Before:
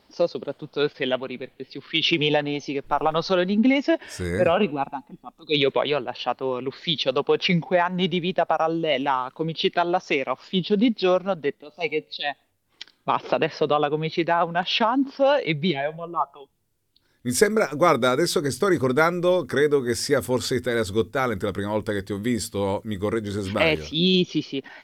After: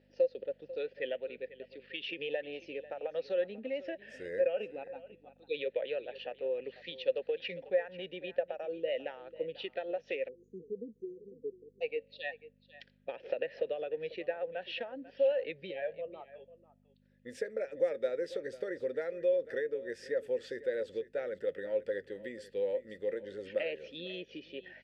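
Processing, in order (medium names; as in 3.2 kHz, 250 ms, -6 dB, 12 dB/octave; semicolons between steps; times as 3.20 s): hum 50 Hz, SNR 15 dB; compression 4:1, threshold -23 dBFS, peak gain reduction 10.5 dB; vowel filter e; delay 494 ms -17 dB; spectral selection erased 10.28–11.81 s, 500–6000 Hz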